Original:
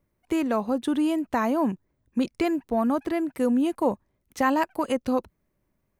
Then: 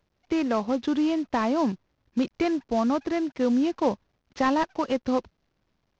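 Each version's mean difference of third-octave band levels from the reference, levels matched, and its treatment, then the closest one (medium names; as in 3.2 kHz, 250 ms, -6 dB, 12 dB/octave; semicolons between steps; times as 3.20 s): 4.5 dB: CVSD coder 32 kbps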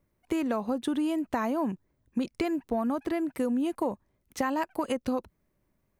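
1.5 dB: compression, threshold -25 dBFS, peak gain reduction 8 dB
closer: second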